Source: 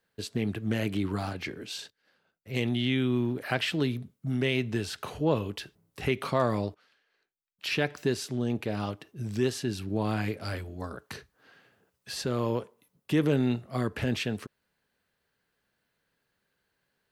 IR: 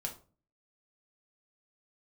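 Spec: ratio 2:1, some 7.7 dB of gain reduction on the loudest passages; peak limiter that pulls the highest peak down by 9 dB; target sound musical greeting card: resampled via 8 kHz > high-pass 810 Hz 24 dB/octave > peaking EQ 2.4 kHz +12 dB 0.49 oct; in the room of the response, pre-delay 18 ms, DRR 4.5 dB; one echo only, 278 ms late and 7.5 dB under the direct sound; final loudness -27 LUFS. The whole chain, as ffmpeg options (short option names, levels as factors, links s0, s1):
-filter_complex "[0:a]acompressor=threshold=0.0178:ratio=2,alimiter=level_in=1.68:limit=0.0631:level=0:latency=1,volume=0.596,aecho=1:1:278:0.422,asplit=2[s0][s1];[1:a]atrim=start_sample=2205,adelay=18[s2];[s1][s2]afir=irnorm=-1:irlink=0,volume=0.596[s3];[s0][s3]amix=inputs=2:normalize=0,aresample=8000,aresample=44100,highpass=f=810:w=0.5412,highpass=f=810:w=1.3066,equalizer=f=2400:t=o:w=0.49:g=12,volume=3.55"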